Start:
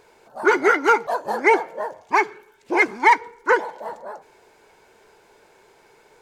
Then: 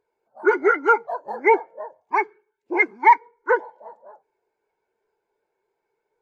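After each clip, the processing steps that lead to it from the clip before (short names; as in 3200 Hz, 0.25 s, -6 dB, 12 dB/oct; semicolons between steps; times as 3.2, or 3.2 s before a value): spectral expander 1.5:1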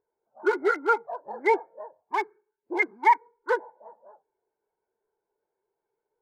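Wiener smoothing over 15 samples; gain -5.5 dB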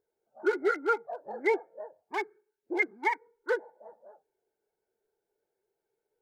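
bell 1000 Hz -14.5 dB 0.31 oct; in parallel at -3 dB: compressor, threshold -34 dBFS, peak gain reduction 15 dB; on the sum: gain -4 dB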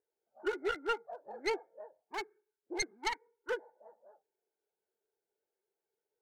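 tracing distortion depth 0.19 ms; low shelf 150 Hz -10 dB; gain -6.5 dB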